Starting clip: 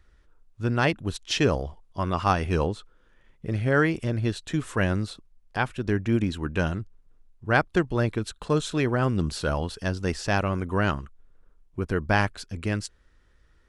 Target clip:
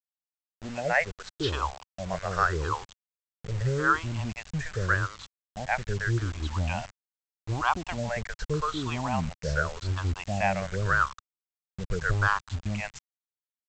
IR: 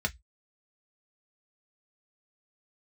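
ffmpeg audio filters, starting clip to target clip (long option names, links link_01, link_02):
-filter_complex "[0:a]afftfilt=real='re*pow(10,18/40*sin(2*PI*(0.59*log(max(b,1)*sr/1024/100)/log(2)-(-0.83)*(pts-256)/sr)))':imag='im*pow(10,18/40*sin(2*PI*(0.59*log(max(b,1)*sr/1024/100)/log(2)-(-0.83)*(pts-256)/sr)))':win_size=1024:overlap=0.75,acrossover=split=470 2200:gain=0.141 1 0.224[link_01][link_02][link_03];[link_01][link_02][link_03]amix=inputs=3:normalize=0,acrossover=split=560[link_04][link_05];[link_05]adelay=120[link_06];[link_04][link_06]amix=inputs=2:normalize=0,aresample=16000,acrusher=bits=6:mix=0:aa=0.000001,aresample=44100,asubboost=boost=8.5:cutoff=120"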